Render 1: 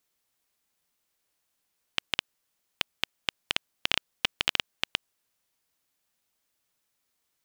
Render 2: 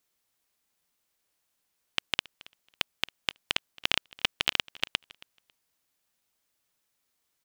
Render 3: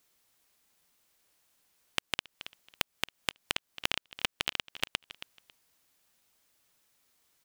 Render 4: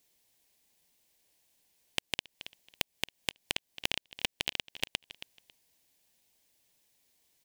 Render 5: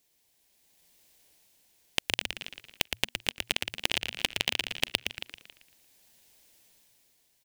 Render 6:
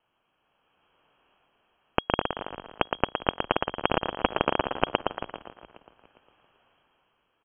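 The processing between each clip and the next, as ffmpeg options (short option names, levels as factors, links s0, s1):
-af "aecho=1:1:274|548:0.075|0.0127"
-af "acompressor=threshold=0.0224:ratio=12,volume=2.11"
-af "equalizer=f=1300:w=2.8:g=-13.5"
-filter_complex "[0:a]dynaudnorm=f=170:g=9:m=2.82,asplit=6[s0][s1][s2][s3][s4][s5];[s1]adelay=115,afreqshift=-120,volume=0.531[s6];[s2]adelay=230,afreqshift=-240,volume=0.207[s7];[s3]adelay=345,afreqshift=-360,volume=0.0804[s8];[s4]adelay=460,afreqshift=-480,volume=0.0316[s9];[s5]adelay=575,afreqshift=-600,volume=0.0123[s10];[s0][s6][s7][s8][s9][s10]amix=inputs=6:normalize=0"
-filter_complex "[0:a]crystalizer=i=4.5:c=0,lowpass=f=2800:t=q:w=0.5098,lowpass=f=2800:t=q:w=0.6013,lowpass=f=2800:t=q:w=0.9,lowpass=f=2800:t=q:w=2.563,afreqshift=-3300,asplit=4[s0][s1][s2][s3];[s1]adelay=406,afreqshift=-36,volume=0.126[s4];[s2]adelay=812,afreqshift=-72,volume=0.0452[s5];[s3]adelay=1218,afreqshift=-108,volume=0.0164[s6];[s0][s4][s5][s6]amix=inputs=4:normalize=0,volume=1.33"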